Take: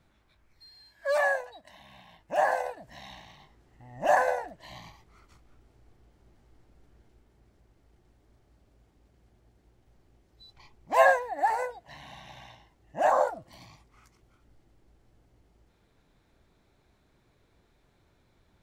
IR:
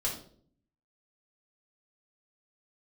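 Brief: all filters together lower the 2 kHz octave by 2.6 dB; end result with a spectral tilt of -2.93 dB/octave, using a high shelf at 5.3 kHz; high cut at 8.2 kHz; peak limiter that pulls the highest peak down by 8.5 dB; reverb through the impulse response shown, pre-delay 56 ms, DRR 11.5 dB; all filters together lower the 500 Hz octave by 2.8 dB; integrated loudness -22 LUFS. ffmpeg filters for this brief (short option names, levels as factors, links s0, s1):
-filter_complex "[0:a]lowpass=8200,equalizer=f=500:t=o:g=-3.5,equalizer=f=2000:t=o:g=-4,highshelf=f=5300:g=8,alimiter=limit=0.112:level=0:latency=1,asplit=2[s0][s1];[1:a]atrim=start_sample=2205,adelay=56[s2];[s1][s2]afir=irnorm=-1:irlink=0,volume=0.158[s3];[s0][s3]amix=inputs=2:normalize=0,volume=3.35"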